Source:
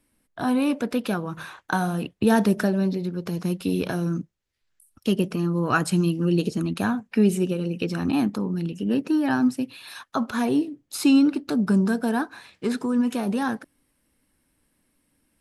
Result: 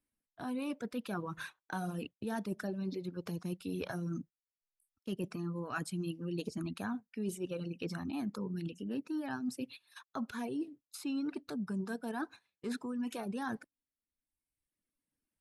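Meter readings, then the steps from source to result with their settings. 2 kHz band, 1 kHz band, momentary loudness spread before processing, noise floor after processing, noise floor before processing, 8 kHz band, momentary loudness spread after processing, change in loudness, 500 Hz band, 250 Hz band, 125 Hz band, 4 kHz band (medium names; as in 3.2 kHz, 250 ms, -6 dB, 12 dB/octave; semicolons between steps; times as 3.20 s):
-14.0 dB, -14.5 dB, 9 LU, under -85 dBFS, -72 dBFS, -13.5 dB, 5 LU, -15.5 dB, -14.5 dB, -16.0 dB, -15.0 dB, -14.0 dB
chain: gate -38 dBFS, range -16 dB; reverb removal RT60 1.1 s; reverse; compression 6:1, threshold -32 dBFS, peak gain reduction 16.5 dB; reverse; trim -3.5 dB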